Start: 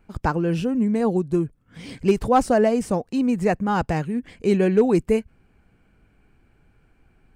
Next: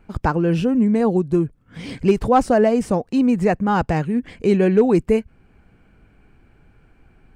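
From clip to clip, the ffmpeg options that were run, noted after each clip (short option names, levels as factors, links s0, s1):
-filter_complex "[0:a]highshelf=f=5300:g=-6.5,asplit=2[s0][s1];[s1]alimiter=limit=0.119:level=0:latency=1:release=437,volume=1[s2];[s0][s2]amix=inputs=2:normalize=0"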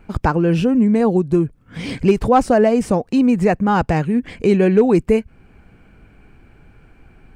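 -filter_complex "[0:a]equalizer=f=2400:t=o:w=0.21:g=2,asplit=2[s0][s1];[s1]acompressor=threshold=0.0631:ratio=6,volume=0.891[s2];[s0][s2]amix=inputs=2:normalize=0"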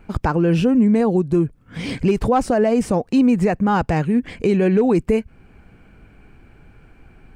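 -af "alimiter=limit=0.376:level=0:latency=1:release=52"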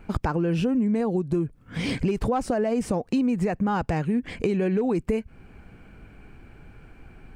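-af "acompressor=threshold=0.0794:ratio=4"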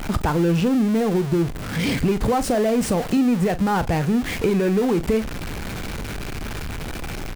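-filter_complex "[0:a]aeval=exprs='val(0)+0.5*0.0473*sgn(val(0))':c=same,asplit=2[s0][s1];[s1]adelay=41,volume=0.2[s2];[s0][s2]amix=inputs=2:normalize=0,volume=1.26"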